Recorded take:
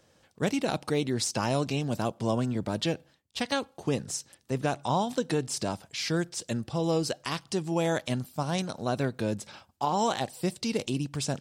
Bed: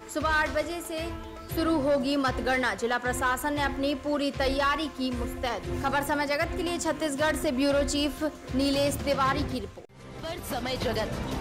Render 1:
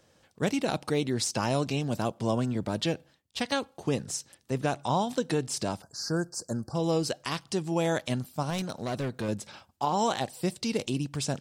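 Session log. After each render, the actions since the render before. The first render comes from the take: 5.82–6.75 Chebyshev band-stop 1600–4500 Hz, order 4; 8.5–9.29 hard clip -27 dBFS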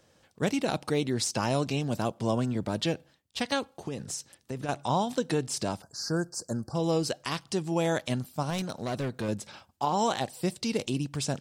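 3.77–4.69 compressor, threshold -30 dBFS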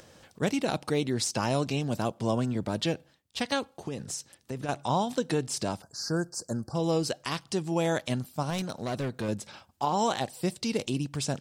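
upward compressor, threshold -45 dBFS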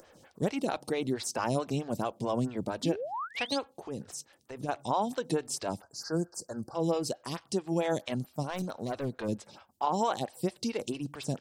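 2.83–3.59 painted sound rise 240–5400 Hz -34 dBFS; photocell phaser 4.5 Hz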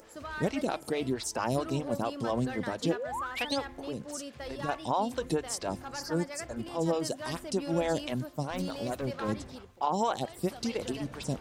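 add bed -14.5 dB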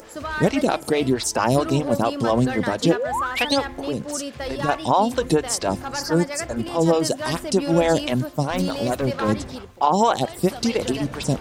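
gain +11 dB

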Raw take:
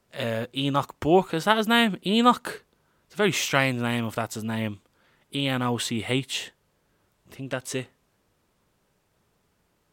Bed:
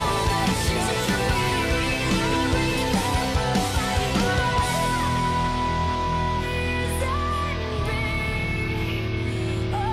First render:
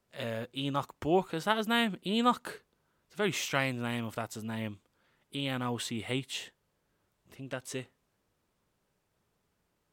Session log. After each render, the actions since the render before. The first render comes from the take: gain -8 dB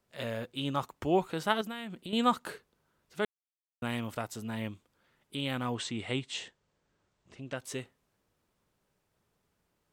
1.61–2.13 compressor 4:1, threshold -38 dBFS; 3.25–3.82 mute; 5.75–7.56 steep low-pass 8200 Hz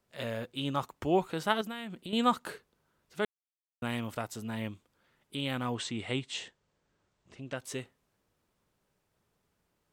nothing audible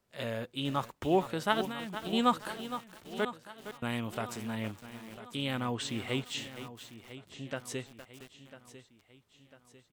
feedback echo 0.998 s, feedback 48%, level -14.5 dB; lo-fi delay 0.463 s, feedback 35%, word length 7-bit, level -11 dB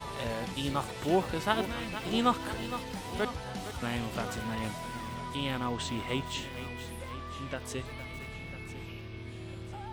add bed -17 dB

